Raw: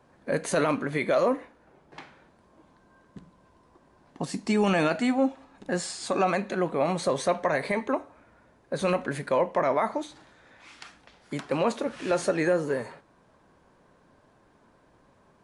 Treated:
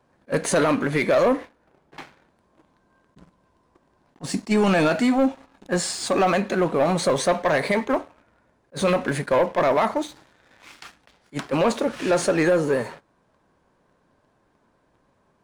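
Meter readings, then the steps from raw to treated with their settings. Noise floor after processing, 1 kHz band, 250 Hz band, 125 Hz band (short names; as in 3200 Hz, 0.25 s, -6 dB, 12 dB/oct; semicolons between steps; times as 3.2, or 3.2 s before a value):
-66 dBFS, +4.5 dB, +5.5 dB, +5.5 dB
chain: sample leveller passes 2; attack slew limiter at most 500 dB/s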